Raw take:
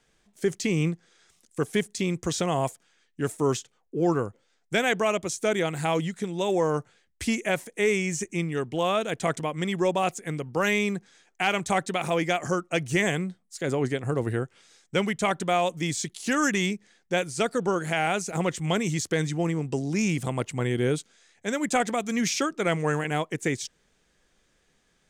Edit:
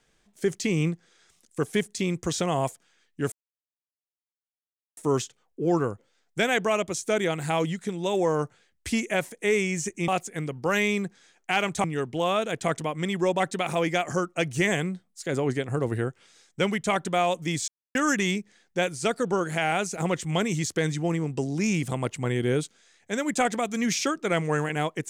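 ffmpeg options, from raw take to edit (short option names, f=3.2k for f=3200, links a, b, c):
-filter_complex "[0:a]asplit=7[a][b][c][d][e][f][g];[a]atrim=end=3.32,asetpts=PTS-STARTPTS,afade=t=out:st=3.316:d=0.004:c=hsin,apad=pad_dur=1.65[h];[b]atrim=start=3.32:end=8.432,asetpts=PTS-STARTPTS,afade=t=in:d=0.004:c=hsin[i];[c]atrim=start=9.988:end=11.752[j];[d]atrim=start=8.428:end=9.992[k];[e]atrim=start=11.748:end=16.03,asetpts=PTS-STARTPTS,afade=t=out:st=4.278:d=0.004:c=hsin[l];[f]atrim=start=16.03:end=16.3,asetpts=PTS-STARTPTS,volume=0[m];[g]atrim=start=16.3,asetpts=PTS-STARTPTS,afade=t=in:d=0.004:c=hsin[n];[h][i]concat=n=2:v=0:a=1[o];[o][j]acrossfade=d=0.004:c1=hsin:c2=hsin[p];[p][k]acrossfade=d=0.004:c1=hsin:c2=hsin[q];[l][m][n]concat=n=3:v=0:a=1[r];[q][r]acrossfade=d=0.004:c1=hsin:c2=hsin"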